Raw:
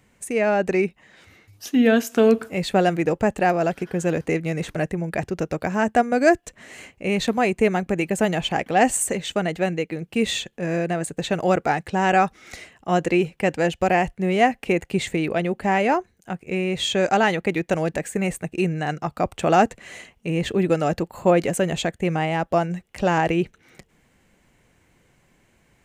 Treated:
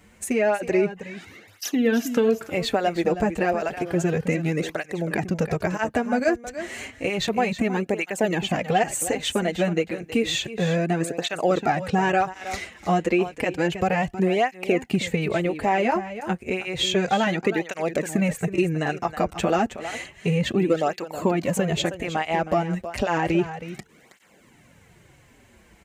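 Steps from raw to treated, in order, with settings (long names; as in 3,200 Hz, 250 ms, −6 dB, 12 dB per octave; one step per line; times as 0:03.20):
dynamic equaliser 9,000 Hz, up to −6 dB, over −52 dBFS, Q 2.5
downward compressor 3 to 1, threshold −28 dBFS, peak gain reduction 13.5 dB
on a send: single-tap delay 319 ms −12 dB
on the sum: through-zero flanger with one copy inverted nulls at 0.31 Hz, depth 7.9 ms
level +9 dB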